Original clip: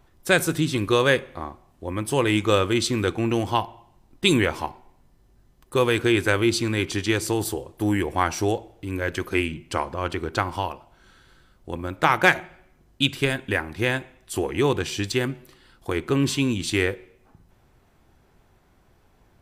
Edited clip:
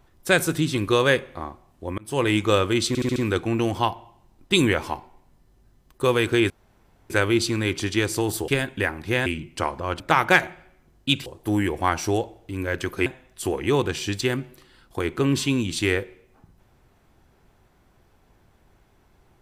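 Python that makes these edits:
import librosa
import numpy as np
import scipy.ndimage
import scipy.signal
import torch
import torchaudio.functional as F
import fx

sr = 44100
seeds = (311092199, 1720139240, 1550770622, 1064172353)

y = fx.edit(x, sr, fx.fade_in_span(start_s=1.98, length_s=0.25),
    fx.stutter(start_s=2.88, slice_s=0.07, count=5),
    fx.insert_room_tone(at_s=6.22, length_s=0.6),
    fx.swap(start_s=7.6, length_s=1.8, other_s=13.19, other_length_s=0.78),
    fx.cut(start_s=10.14, length_s=1.79), tone=tone)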